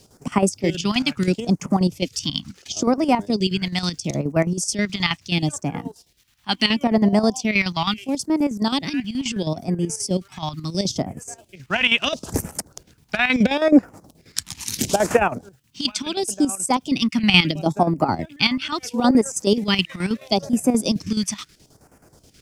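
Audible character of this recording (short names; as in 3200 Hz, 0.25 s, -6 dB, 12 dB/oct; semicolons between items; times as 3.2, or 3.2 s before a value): a quantiser's noise floor 12-bit, dither triangular; chopped level 9.4 Hz, depth 65%, duty 60%; phasing stages 2, 0.74 Hz, lowest notch 440–3600 Hz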